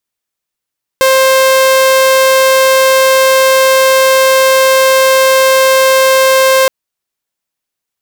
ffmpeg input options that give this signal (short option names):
-f lavfi -i "aevalsrc='0.708*(2*mod(528*t,1)-1)':d=5.67:s=44100"